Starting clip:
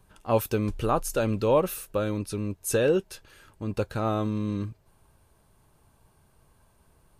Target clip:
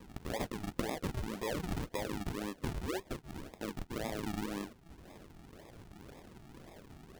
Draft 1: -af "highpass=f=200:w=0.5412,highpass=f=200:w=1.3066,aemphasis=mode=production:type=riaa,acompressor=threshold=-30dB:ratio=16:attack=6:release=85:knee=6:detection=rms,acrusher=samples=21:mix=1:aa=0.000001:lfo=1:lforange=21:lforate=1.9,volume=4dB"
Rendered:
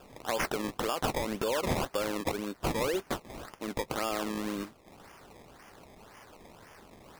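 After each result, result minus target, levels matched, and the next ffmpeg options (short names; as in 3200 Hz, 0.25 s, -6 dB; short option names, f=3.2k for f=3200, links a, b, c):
decimation with a swept rate: distortion -13 dB; compressor: peak gain reduction -6.5 dB
-af "highpass=f=200:w=0.5412,highpass=f=200:w=1.3066,aemphasis=mode=production:type=riaa,acompressor=threshold=-30dB:ratio=16:attack=6:release=85:knee=6:detection=rms,acrusher=samples=59:mix=1:aa=0.000001:lfo=1:lforange=59:lforate=1.9,volume=4dB"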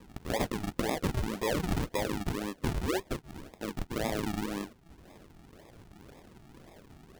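compressor: peak gain reduction -6.5 dB
-af "highpass=f=200:w=0.5412,highpass=f=200:w=1.3066,aemphasis=mode=production:type=riaa,acompressor=threshold=-37dB:ratio=16:attack=6:release=85:knee=6:detection=rms,acrusher=samples=59:mix=1:aa=0.000001:lfo=1:lforange=59:lforate=1.9,volume=4dB"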